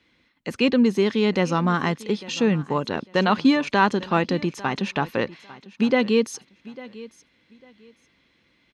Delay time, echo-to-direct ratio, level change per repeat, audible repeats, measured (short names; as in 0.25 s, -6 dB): 0.849 s, -19.0 dB, -13.0 dB, 2